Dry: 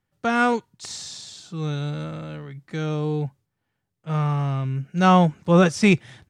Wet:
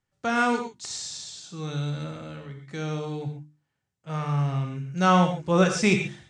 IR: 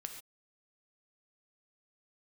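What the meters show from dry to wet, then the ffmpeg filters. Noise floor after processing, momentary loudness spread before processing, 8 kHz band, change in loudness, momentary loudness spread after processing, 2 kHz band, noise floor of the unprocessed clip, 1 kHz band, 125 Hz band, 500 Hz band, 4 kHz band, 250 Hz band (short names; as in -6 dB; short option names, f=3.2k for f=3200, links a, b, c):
-81 dBFS, 18 LU, +1.5 dB, -4.0 dB, 17 LU, -2.0 dB, -79 dBFS, -3.0 dB, -4.5 dB, -3.5 dB, -1.0 dB, -4.5 dB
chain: -filter_complex "[0:a]lowpass=f=7.5k:t=q:w=1.7,bandreject=f=50:t=h:w=6,bandreject=f=100:t=h:w=6,bandreject=f=150:t=h:w=6,bandreject=f=200:t=h:w=6,bandreject=f=250:t=h:w=6,bandreject=f=300:t=h:w=6,bandreject=f=350:t=h:w=6[a];[1:a]atrim=start_sample=2205[b];[a][b]afir=irnorm=-1:irlink=0"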